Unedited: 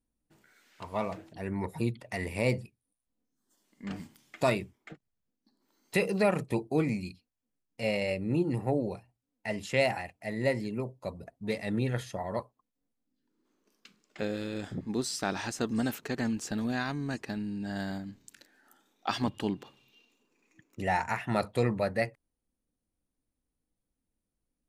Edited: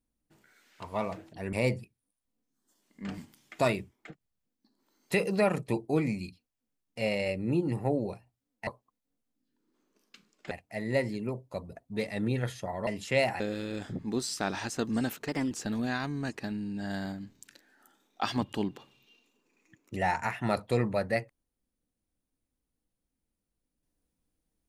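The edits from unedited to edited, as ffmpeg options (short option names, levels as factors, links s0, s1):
-filter_complex "[0:a]asplit=8[s0][s1][s2][s3][s4][s5][s6][s7];[s0]atrim=end=1.532[s8];[s1]atrim=start=2.348:end=9.492[s9];[s2]atrim=start=12.378:end=14.222[s10];[s3]atrim=start=10.018:end=12.382[s11];[s4]atrim=start=9.488:end=10.022[s12];[s5]atrim=start=14.218:end=16.104[s13];[s6]atrim=start=16.1:end=16.37,asetpts=PTS-STARTPTS,asetrate=51156,aresample=44100[s14];[s7]atrim=start=16.366[s15];[s8][s9]acrossfade=d=0.004:c1=hsin:c2=hsin[s16];[s16][s10]acrossfade=d=0.004:c1=hsin:c2=hsin[s17];[s17][s11]acrossfade=d=0.004:c1=hsin:c2=hsin[s18];[s18][s12]acrossfade=d=0.004:c1=hsin:c2=hsin[s19];[s19][s13]acrossfade=d=0.004:c1=hsin:c2=hsin[s20];[s20][s14]acrossfade=d=0.004:c1=hsin:c2=hsin[s21];[s21][s15]acrossfade=d=0.004:c1=hsin:c2=hsin"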